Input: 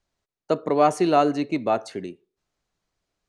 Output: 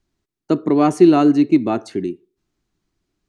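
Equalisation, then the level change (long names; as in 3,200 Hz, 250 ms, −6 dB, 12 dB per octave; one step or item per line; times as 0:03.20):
low shelf with overshoot 420 Hz +6 dB, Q 3
+1.5 dB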